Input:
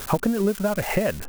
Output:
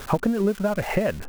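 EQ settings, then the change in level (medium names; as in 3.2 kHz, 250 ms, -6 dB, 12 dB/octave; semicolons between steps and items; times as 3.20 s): treble shelf 5.5 kHz -10.5 dB; 0.0 dB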